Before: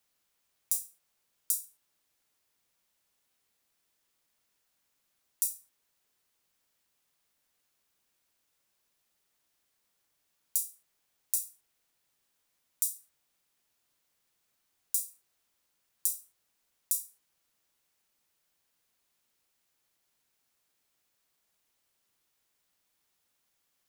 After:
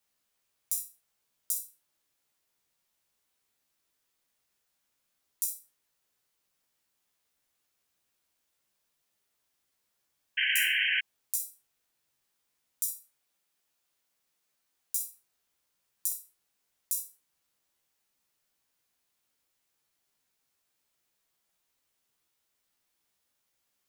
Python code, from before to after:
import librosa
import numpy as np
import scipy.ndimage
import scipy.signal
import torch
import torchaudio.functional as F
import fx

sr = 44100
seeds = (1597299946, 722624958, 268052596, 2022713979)

y = fx.low_shelf(x, sr, hz=170.0, db=-6.5, at=(12.89, 15.03))
y = fx.room_early_taps(y, sr, ms=(15, 62), db=(-3.5, -8.5))
y = fx.spec_paint(y, sr, seeds[0], shape='noise', start_s=10.37, length_s=0.64, low_hz=1500.0, high_hz=3200.0, level_db=-24.0)
y = y * librosa.db_to_amplitude(-3.5)